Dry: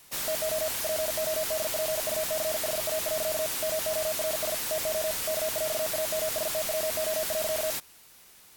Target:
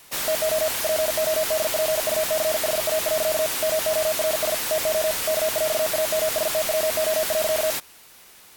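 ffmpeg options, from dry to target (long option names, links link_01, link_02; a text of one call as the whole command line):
ffmpeg -i in.wav -af "bass=frequency=250:gain=-4,treble=frequency=4000:gain=-3,volume=7.5dB" out.wav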